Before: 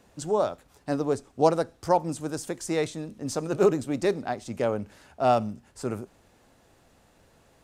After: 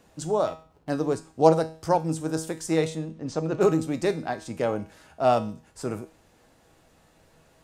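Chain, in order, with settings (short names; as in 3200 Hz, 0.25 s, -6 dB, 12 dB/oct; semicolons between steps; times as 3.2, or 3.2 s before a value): 0.47–0.9 median filter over 25 samples; 2.95–3.61 air absorption 120 m; resonator 160 Hz, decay 0.41 s, harmonics all, mix 70%; gain +9 dB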